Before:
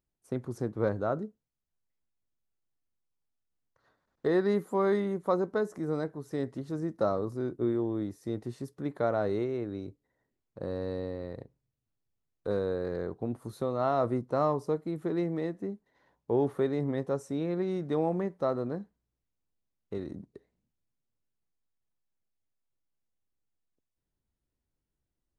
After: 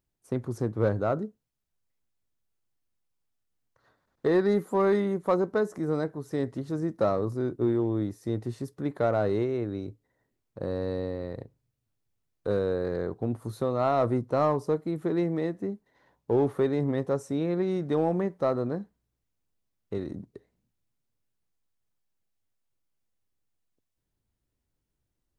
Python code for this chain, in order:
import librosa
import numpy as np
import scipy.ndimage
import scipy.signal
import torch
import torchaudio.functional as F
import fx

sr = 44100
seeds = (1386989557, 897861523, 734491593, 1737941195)

p1 = np.clip(x, -10.0 ** (-23.5 / 20.0), 10.0 ** (-23.5 / 20.0))
p2 = x + F.gain(torch.from_numpy(p1), -6.0).numpy()
y = fx.peak_eq(p2, sr, hz=110.0, db=5.0, octaves=0.22)